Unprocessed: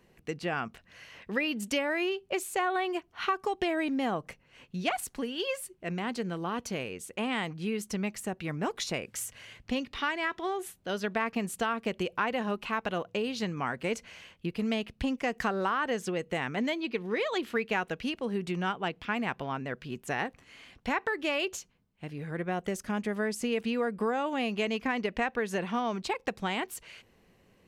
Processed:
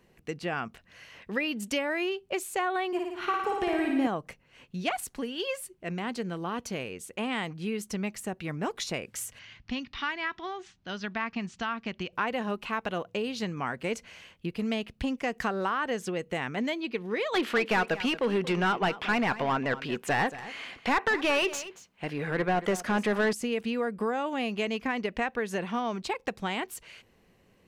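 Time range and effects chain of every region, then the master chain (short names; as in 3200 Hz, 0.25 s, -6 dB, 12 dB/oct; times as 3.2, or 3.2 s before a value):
2.87–4.07 dynamic EQ 3900 Hz, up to -6 dB, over -48 dBFS, Q 0.72 + flutter echo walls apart 9.6 m, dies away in 1.1 s
9.39–12.13 steep low-pass 6100 Hz + bell 490 Hz -11 dB 0.91 oct
17.34–23.33 high shelf 6500 Hz +4 dB + overdrive pedal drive 21 dB, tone 2000 Hz, clips at -16 dBFS + echo 0.229 s -15.5 dB
whole clip: dry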